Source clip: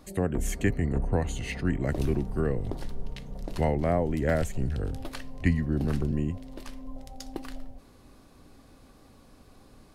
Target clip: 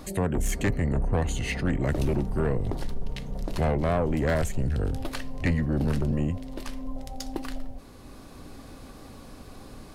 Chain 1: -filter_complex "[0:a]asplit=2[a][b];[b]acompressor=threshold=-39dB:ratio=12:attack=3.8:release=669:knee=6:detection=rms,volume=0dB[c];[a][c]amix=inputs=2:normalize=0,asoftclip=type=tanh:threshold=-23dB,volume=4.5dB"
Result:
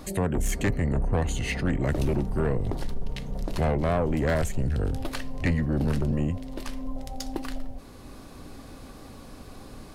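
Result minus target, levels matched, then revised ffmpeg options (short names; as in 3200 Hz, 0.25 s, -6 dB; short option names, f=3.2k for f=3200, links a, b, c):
compressor: peak gain reduction -6 dB
-filter_complex "[0:a]asplit=2[a][b];[b]acompressor=threshold=-45.5dB:ratio=12:attack=3.8:release=669:knee=6:detection=rms,volume=0dB[c];[a][c]amix=inputs=2:normalize=0,asoftclip=type=tanh:threshold=-23dB,volume=4.5dB"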